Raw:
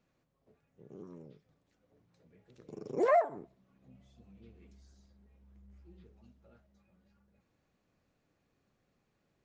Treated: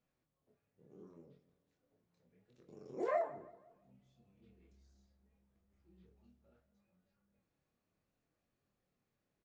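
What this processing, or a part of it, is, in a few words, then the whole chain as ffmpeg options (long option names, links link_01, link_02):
double-tracked vocal: -filter_complex "[0:a]asplit=2[link_01][link_02];[link_02]adelay=21,volume=-11.5dB[link_03];[link_01][link_03]amix=inputs=2:normalize=0,asplit=2[link_04][link_05];[link_05]adelay=167,lowpass=frequency=2500:poles=1,volume=-17dB,asplit=2[link_06][link_07];[link_07]adelay=167,lowpass=frequency=2500:poles=1,volume=0.43,asplit=2[link_08][link_09];[link_09]adelay=167,lowpass=frequency=2500:poles=1,volume=0.43,asplit=2[link_10][link_11];[link_11]adelay=167,lowpass=frequency=2500:poles=1,volume=0.43[link_12];[link_04][link_06][link_08][link_10][link_12]amix=inputs=5:normalize=0,flanger=delay=22.5:depth=7:speed=0.71,volume=-6dB"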